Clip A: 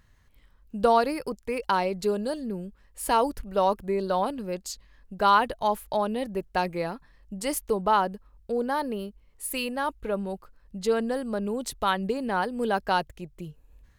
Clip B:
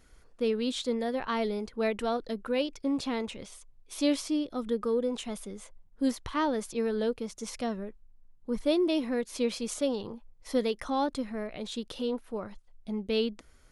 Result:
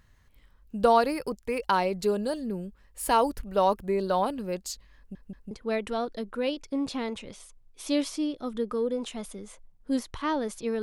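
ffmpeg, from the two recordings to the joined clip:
-filter_complex "[0:a]apad=whole_dur=10.82,atrim=end=10.82,asplit=3[s0][s1][s2];[s0]atrim=end=5.152[s3];[s1]atrim=start=4.968:end=5.152[s4];[s2]atrim=start=4.968:end=5.152[s5];[1:a]atrim=start=1.628:end=6.94[s6];[s3][s4]acrossfade=d=0.004:c1=hsin:c2=hsin[s7];[s7][s5]acrossfade=d=0.004:c1=hsin:c2=hsin[s8];[s8][s6]acrossfade=d=0.004:c1=hsin:c2=hsin"

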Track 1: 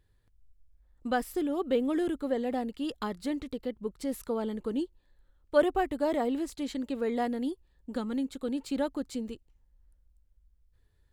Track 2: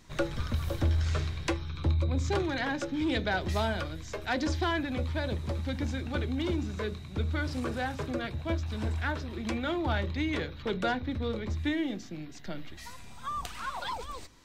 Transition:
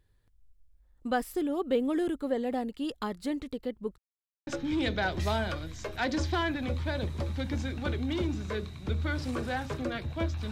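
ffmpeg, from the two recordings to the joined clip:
-filter_complex "[0:a]apad=whole_dur=10.51,atrim=end=10.51,asplit=2[s0][s1];[s0]atrim=end=3.98,asetpts=PTS-STARTPTS,afade=t=out:st=3.976:d=0.004:c=hsin[s2];[s1]atrim=start=3.98:end=4.47,asetpts=PTS-STARTPTS,volume=0[s3];[1:a]atrim=start=2.76:end=8.8,asetpts=PTS-STARTPTS,afade=t=in:d=0.004:c=hsin[s4];[s2][s3][s4]concat=n=3:v=0:a=1"

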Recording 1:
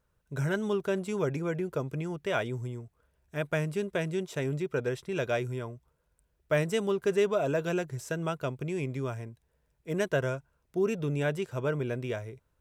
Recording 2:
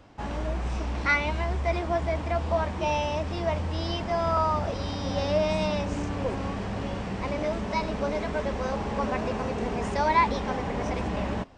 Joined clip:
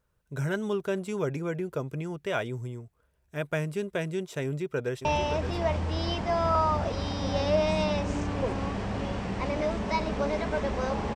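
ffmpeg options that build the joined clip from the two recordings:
-filter_complex "[0:a]apad=whole_dur=11.15,atrim=end=11.15,atrim=end=5.052[s0];[1:a]atrim=start=2.868:end=8.97[s1];[s0][s1]acrossfade=d=0.004:c1=hsin:c2=hsin,asplit=2[s2][s3];[s3]afade=t=in:st=4.44:d=0.01,afade=t=out:st=5.05:d=0.01,aecho=0:1:570|1140|1710|2280:0.398107|0.119432|0.0358296|0.0107489[s4];[s2][s4]amix=inputs=2:normalize=0"

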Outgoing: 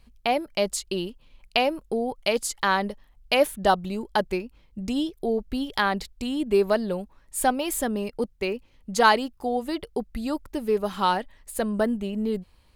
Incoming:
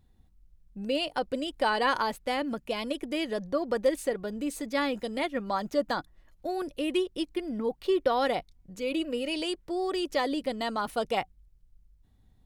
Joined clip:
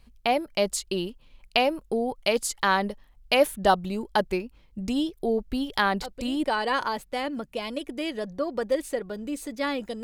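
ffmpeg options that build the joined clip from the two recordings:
-filter_complex "[1:a]asplit=2[s0][s1];[0:a]apad=whole_dur=10.03,atrim=end=10.03,atrim=end=6.442[s2];[s1]atrim=start=1.578:end=5.17[s3];[s0]atrim=start=1.12:end=1.58,asetpts=PTS-STARTPTS,volume=0.376,afade=t=in:d=0.004:c=hsin,afade=t=out:st=0.456:d=0.004:c=hsin,adelay=5980[s4];[s2][s3]acrossfade=d=0.004:c1=hsin:c2=hsin[s5];[s5][s4]amix=inputs=2:normalize=0"

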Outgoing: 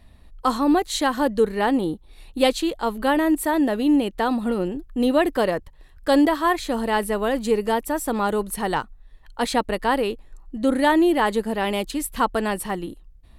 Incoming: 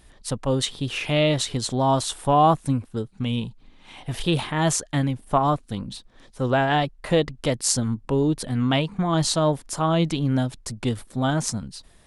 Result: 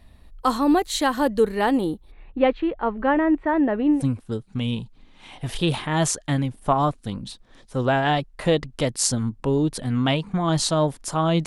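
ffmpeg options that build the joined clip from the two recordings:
-filter_complex "[0:a]asplit=3[s0][s1][s2];[s0]afade=t=out:st=2.1:d=0.02[s3];[s1]lowpass=f=2300:w=0.5412,lowpass=f=2300:w=1.3066,afade=t=in:st=2.1:d=0.02,afade=t=out:st=4.04:d=0.02[s4];[s2]afade=t=in:st=4.04:d=0.02[s5];[s3][s4][s5]amix=inputs=3:normalize=0,apad=whole_dur=11.46,atrim=end=11.46,atrim=end=4.04,asetpts=PTS-STARTPTS[s6];[1:a]atrim=start=2.55:end=10.11,asetpts=PTS-STARTPTS[s7];[s6][s7]acrossfade=d=0.14:c1=tri:c2=tri"

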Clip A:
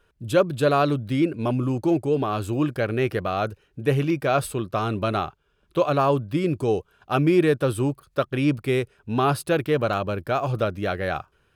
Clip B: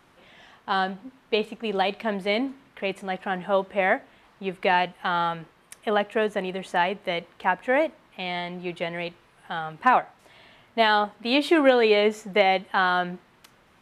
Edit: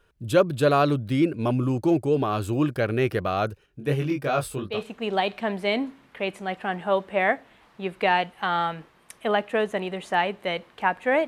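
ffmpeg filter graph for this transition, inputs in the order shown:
-filter_complex "[0:a]asettb=1/sr,asplit=3[s0][s1][s2];[s0]atrim=end=3.664[s3];[s1]atrim=start=3.66:end=4.82,asetpts=PTS-STARTPTS,afade=t=in:d=0.004:c=qsin,afade=t=out:st=1.156:d=0.004:c=qsin,flanger=delay=19.5:depth=2.8:speed=2.8[s4];[s2]atrim=start=4.816[s5];[s3][s4]acrossfade=d=0.004:c1=hsin:c2=qsin[s6];[s6][s5]acrossfade=d=0.004:c1=qsin:c2=hsin,apad=whole_dur=11.27,atrim=end=11.27,atrim=end=4.82,asetpts=PTS-STARTPTS[s7];[1:a]atrim=start=1.3:end=7.89,asetpts=PTS-STARTPTS[s8];[s7][s8]acrossfade=d=0.14:c1=tri:c2=tri"

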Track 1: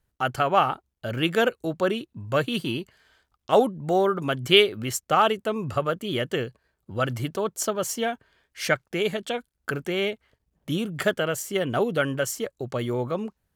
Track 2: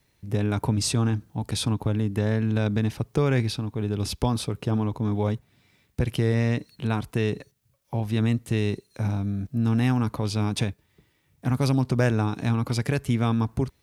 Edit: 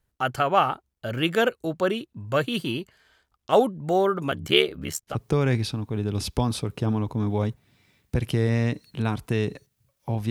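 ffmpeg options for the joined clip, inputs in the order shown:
-filter_complex "[0:a]asplit=3[s0][s1][s2];[s0]afade=t=out:st=4.3:d=0.02[s3];[s1]aeval=exprs='val(0)*sin(2*PI*36*n/s)':c=same,afade=t=in:st=4.3:d=0.02,afade=t=out:st=5.17:d=0.02[s4];[s2]afade=t=in:st=5.17:d=0.02[s5];[s3][s4][s5]amix=inputs=3:normalize=0,apad=whole_dur=10.3,atrim=end=10.3,atrim=end=5.17,asetpts=PTS-STARTPTS[s6];[1:a]atrim=start=2.92:end=8.15,asetpts=PTS-STARTPTS[s7];[s6][s7]acrossfade=d=0.1:c1=tri:c2=tri"

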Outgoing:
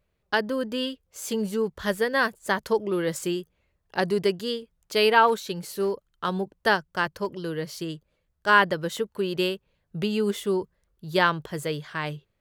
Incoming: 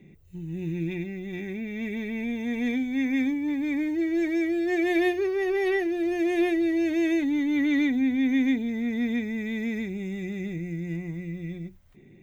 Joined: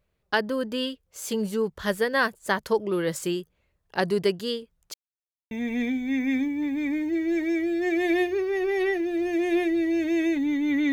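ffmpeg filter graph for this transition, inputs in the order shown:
-filter_complex "[0:a]apad=whole_dur=10.92,atrim=end=10.92,asplit=2[s0][s1];[s0]atrim=end=4.94,asetpts=PTS-STARTPTS,afade=t=out:st=4.936:d=0.004:c=hsin[s2];[s1]atrim=start=4.94:end=5.51,asetpts=PTS-STARTPTS,volume=0[s3];[1:a]atrim=start=2.37:end=7.78,asetpts=PTS-STARTPTS,afade=t=in:d=0.004:c=hsin[s4];[s2][s3][s4]concat=n=3:v=0:a=1"

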